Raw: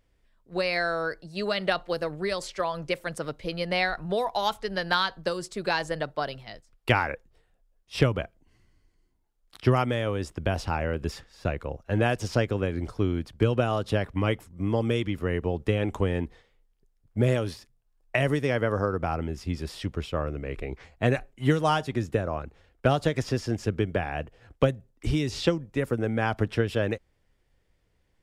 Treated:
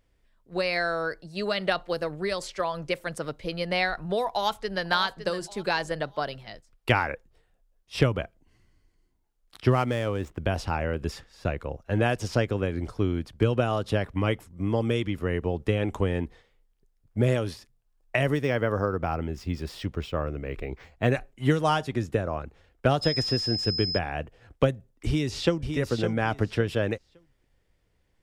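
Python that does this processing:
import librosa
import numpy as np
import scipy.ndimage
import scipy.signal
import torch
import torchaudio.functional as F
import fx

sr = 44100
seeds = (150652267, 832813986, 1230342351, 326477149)

y = fx.echo_throw(x, sr, start_s=4.29, length_s=0.61, ms=560, feedback_pct=30, wet_db=-11.0)
y = fx.median_filter(y, sr, points=9, at=(9.69, 10.41))
y = fx.resample_linear(y, sr, factor=2, at=(18.23, 21.12))
y = fx.dmg_tone(y, sr, hz=5100.0, level_db=-28.0, at=(23.01, 23.97), fade=0.02)
y = fx.echo_throw(y, sr, start_s=25.06, length_s=0.7, ms=560, feedback_pct=20, wet_db=-6.5)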